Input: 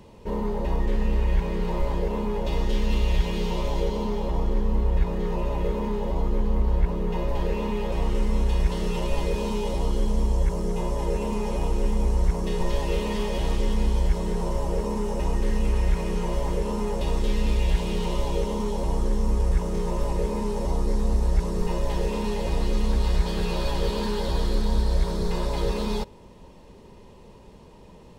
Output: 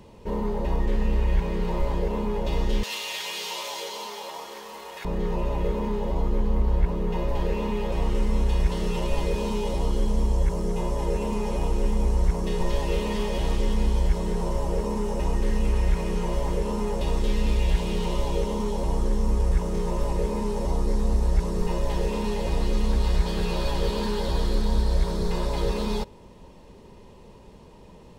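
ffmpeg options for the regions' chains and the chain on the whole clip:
-filter_complex "[0:a]asettb=1/sr,asplit=3[a][b][c];[a]atrim=end=2.834[d];[b]atrim=start=2.83:end=5.05,asetpts=PTS-STARTPTS,afade=t=in:d=0.004:c=qsin,afade=t=out:st=2.216:d=0.004:c=qsin,highpass=780,highshelf=f=2.9k:g=12[e];[c]atrim=start=5.046[f];[d][e]acrossfade=d=0.004:c1=hsin:c2=qsin[g];[g][f]acrossfade=d=0.004:c1=qsin:c2=hsin"

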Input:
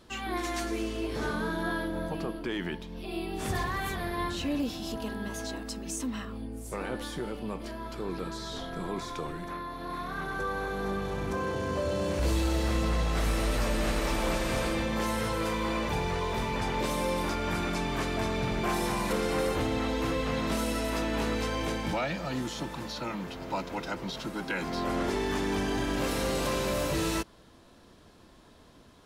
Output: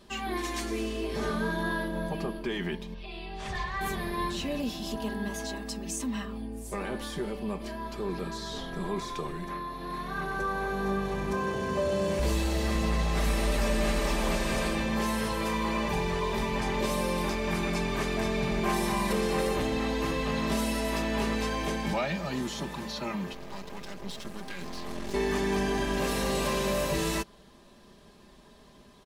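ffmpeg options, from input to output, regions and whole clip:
-filter_complex "[0:a]asettb=1/sr,asplit=3[a][b][c];[a]atrim=end=2.944[d];[b]atrim=start=2.94:end=3.81,asetpts=PTS-STARTPTS,afade=t=in:d=0.004:c=qsin,afade=t=out:st=0.866:d=0.004:c=qsin,lowpass=4.5k,equalizer=f=280:t=o:w=1.7:g=-14[e];[c]atrim=start=3.806[f];[d][e]acrossfade=d=0.004:c1=hsin:c2=qsin[g];[g][f]acrossfade=d=0.004:c1=qsin:c2=hsin,asettb=1/sr,asplit=3[h][i][j];[h]atrim=end=23.334[k];[i]atrim=start=23.33:end=25.14,asetpts=PTS-STARTPTS,afade=t=in:d=0.004:c=qsin,afade=t=out:st=1.806:d=0.004:c=qsin,acrossover=split=200|3000[l][m][n];[m]acompressor=threshold=-36dB:ratio=4:attack=3.2:release=140:knee=2.83:detection=peak[o];[l][o][n]amix=inputs=3:normalize=0,aeval=exprs='max(val(0),0)':c=same[p];[j]atrim=start=25.136[q];[k][p]acrossfade=d=0.004:c1=hsin:c2=qsin[r];[r][q]acrossfade=d=0.004:c1=qsin:c2=hsin,bandreject=f=1.4k:w=13,aecho=1:1:5:0.56"

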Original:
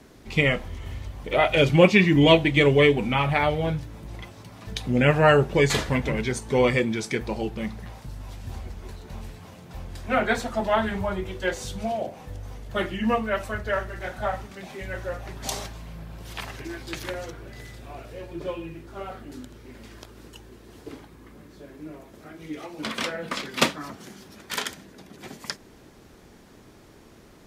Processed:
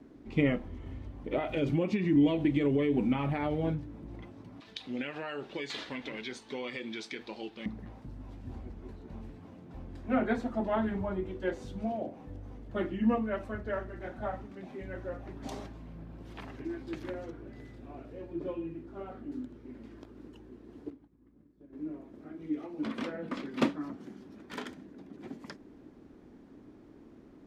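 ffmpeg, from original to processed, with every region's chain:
-filter_complex "[0:a]asettb=1/sr,asplit=3[a][b][c];[a]atrim=end=1.364[d];[b]atrim=start=1.36:end=3.75,asetpts=PTS-STARTPTS,afade=t=in:d=0.004:c=qsin,afade=t=out:st=2.386:d=0.004:c=qsin,highshelf=f=4.3k:g=7,acompressor=threshold=-19dB:ratio=12:attack=3.2:release=140:knee=1:detection=peak[e];[c]atrim=start=3.746[f];[d][e]acrossfade=d=0.004:c1=hsin:c2=qsin[g];[g][f]acrossfade=d=0.004:c1=qsin:c2=hsin,asettb=1/sr,asplit=3[h][i][j];[h]atrim=end=4.604[k];[i]atrim=start=4.6:end=7.66,asetpts=PTS-STARTPTS,afade=t=in:d=0.004:c=qsin,afade=t=out:st=3.056:d=0.004:c=qsin,highpass=f=980:p=1,acompressor=threshold=-29dB:ratio=4:attack=3.2:release=140:knee=1:detection=peak,equalizer=f=3.8k:w=0.9:g=14.5[l];[j]atrim=start=7.656[m];[k][l]acrossfade=d=0.004:c1=hsin:c2=qsin[n];[n][m]acrossfade=d=0.004:c1=qsin:c2=hsin,asettb=1/sr,asplit=3[o][p][q];[o]atrim=end=20.904[r];[p]atrim=start=20.9:end=21.73,asetpts=PTS-STARTPTS,afade=t=in:d=0.004:c=qsin,afade=t=out:st=0.826:d=0.004:c=qsin,agate=range=-33dB:threshold=-37dB:ratio=3:release=100:detection=peak,lowshelf=f=230:g=9,acompressor=threshold=-47dB:ratio=12:attack=3.2:release=140:knee=1:detection=peak[s];[q]atrim=start=21.726[t];[r][s]acrossfade=d=0.004:c1=hsin:c2=qsin[u];[u][t]acrossfade=d=0.004:c1=qsin:c2=hsin,lowpass=f=1.4k:p=1,equalizer=f=280:t=o:w=0.81:g=12,volume=-8.5dB"

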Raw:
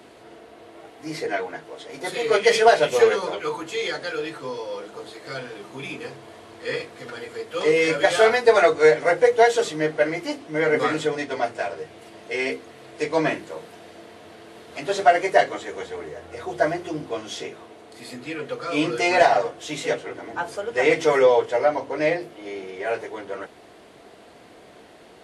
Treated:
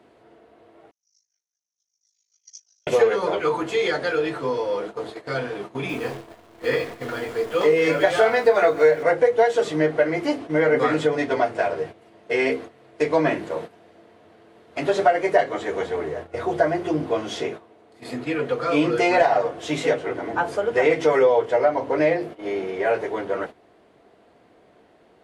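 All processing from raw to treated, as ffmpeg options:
-filter_complex "[0:a]asettb=1/sr,asplit=3[a][b][c];[a]atrim=end=0.914[d];[b]atrim=start=0.91:end=2.87,asetpts=PTS-STARTPTS,afade=t=in:d=0.004:c=qsin,afade=t=out:st=1.956:d=0.004:c=qsin,asuperpass=centerf=6000:order=4:qfactor=6.6,aeval=exprs='val(0)*sin(2*PI*26*n/s)':c=same[e];[c]atrim=start=2.866[f];[d][e]acrossfade=d=0.004:c1=hsin:c2=qsin[g];[g][f]acrossfade=d=0.004:c1=qsin:c2=hsin,asettb=1/sr,asplit=3[h][i][j];[h]atrim=end=5.894[k];[i]atrim=start=5.89:end=9.03,asetpts=PTS-STARTPTS,afade=t=in:d=0.004:c=qsin,afade=t=out:st=3.136:d=0.004:c=qsin,acrusher=bits=8:dc=4:mix=0:aa=0.000001,asplit=2[l][m];[m]adelay=24,volume=-9dB[n];[l][n]amix=inputs=2:normalize=0,atrim=end_sample=138474,aecho=1:1:146:0.0891,atrim=end_sample=138474[o];[j]atrim=start=9.026[p];[k][o]acrossfade=d=0.004:c1=hsin:c2=qsin[q];[q][p]acrossfade=d=0.004:c1=qsin:c2=hsin,agate=range=-14dB:threshold=-39dB:ratio=16:detection=peak,highshelf=f=2.8k:g=-11,acompressor=threshold=-25dB:ratio=2.5,volume=7.5dB"

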